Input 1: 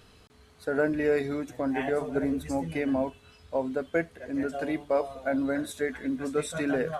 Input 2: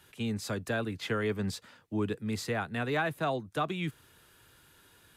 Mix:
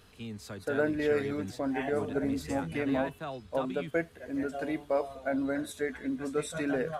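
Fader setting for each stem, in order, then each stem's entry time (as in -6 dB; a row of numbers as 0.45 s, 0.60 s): -3.0 dB, -8.0 dB; 0.00 s, 0.00 s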